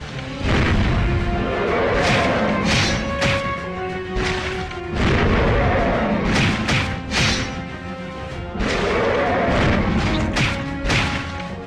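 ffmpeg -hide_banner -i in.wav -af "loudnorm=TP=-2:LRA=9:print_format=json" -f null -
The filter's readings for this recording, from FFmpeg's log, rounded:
"input_i" : "-19.9",
"input_tp" : "-7.7",
"input_lra" : "1.4",
"input_thresh" : "-30.0",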